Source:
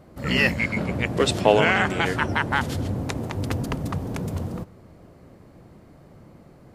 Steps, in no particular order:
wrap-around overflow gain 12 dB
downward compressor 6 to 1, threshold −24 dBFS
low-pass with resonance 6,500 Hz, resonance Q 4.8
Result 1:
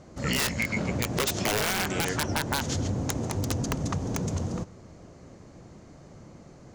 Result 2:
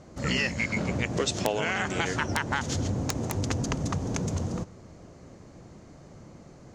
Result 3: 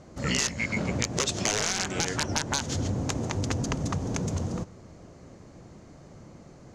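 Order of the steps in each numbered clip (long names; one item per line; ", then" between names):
low-pass with resonance, then wrap-around overflow, then downward compressor
low-pass with resonance, then downward compressor, then wrap-around overflow
wrap-around overflow, then low-pass with resonance, then downward compressor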